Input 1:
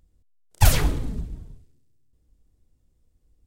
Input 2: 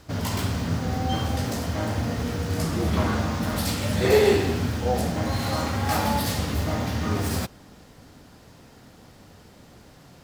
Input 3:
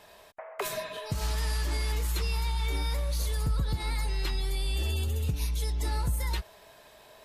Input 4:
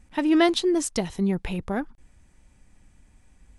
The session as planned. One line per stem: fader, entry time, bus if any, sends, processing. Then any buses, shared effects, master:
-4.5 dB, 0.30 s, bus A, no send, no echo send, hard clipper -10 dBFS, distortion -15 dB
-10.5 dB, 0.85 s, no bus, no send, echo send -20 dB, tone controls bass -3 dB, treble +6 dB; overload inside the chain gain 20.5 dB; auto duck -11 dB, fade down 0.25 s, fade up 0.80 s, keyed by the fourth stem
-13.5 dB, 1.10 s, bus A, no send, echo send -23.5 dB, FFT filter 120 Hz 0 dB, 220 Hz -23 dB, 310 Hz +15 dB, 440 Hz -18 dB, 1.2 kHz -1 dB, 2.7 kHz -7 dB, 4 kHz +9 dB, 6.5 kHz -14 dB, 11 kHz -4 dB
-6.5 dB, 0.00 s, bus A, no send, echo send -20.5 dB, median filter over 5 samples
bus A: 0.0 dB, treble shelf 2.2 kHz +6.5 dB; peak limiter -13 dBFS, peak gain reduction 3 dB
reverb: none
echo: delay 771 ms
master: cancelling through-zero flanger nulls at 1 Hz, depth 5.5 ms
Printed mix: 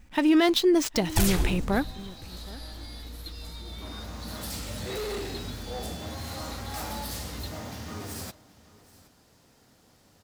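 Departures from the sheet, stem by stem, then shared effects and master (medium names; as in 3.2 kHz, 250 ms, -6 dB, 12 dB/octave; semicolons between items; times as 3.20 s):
stem 1: entry 0.30 s -> 0.55 s; stem 4 -6.5 dB -> +1.5 dB; master: missing cancelling through-zero flanger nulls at 1 Hz, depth 5.5 ms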